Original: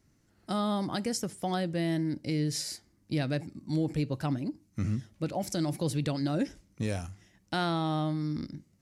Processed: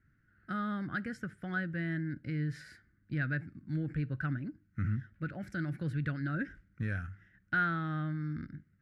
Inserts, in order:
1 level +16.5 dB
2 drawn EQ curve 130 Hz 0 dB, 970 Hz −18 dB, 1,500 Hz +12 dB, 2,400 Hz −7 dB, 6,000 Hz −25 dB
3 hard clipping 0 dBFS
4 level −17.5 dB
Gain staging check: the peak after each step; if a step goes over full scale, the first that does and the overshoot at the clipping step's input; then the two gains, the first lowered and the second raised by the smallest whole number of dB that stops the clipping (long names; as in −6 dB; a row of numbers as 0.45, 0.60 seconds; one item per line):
−4.0, −3.5, −3.5, −21.0 dBFS
no step passes full scale